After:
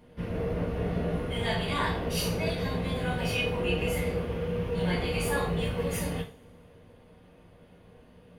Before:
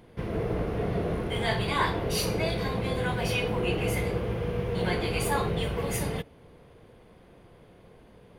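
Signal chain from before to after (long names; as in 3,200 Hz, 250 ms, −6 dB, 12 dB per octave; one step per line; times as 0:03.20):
coupled-rooms reverb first 0.33 s, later 1.7 s, from −26 dB, DRR −2.5 dB
level −6 dB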